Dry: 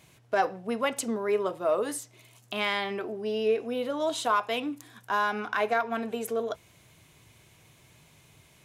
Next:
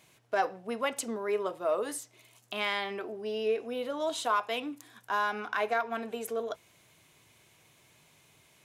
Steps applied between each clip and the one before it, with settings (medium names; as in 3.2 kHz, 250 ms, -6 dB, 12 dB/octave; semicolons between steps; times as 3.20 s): bass shelf 150 Hz -12 dB; trim -2.5 dB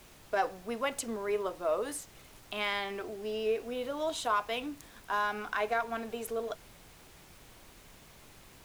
added noise pink -54 dBFS; trim -1.5 dB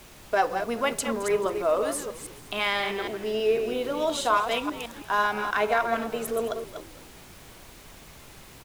chunks repeated in reverse 162 ms, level -7 dB; frequency-shifting echo 217 ms, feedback 47%, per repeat -67 Hz, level -17 dB; trim +6.5 dB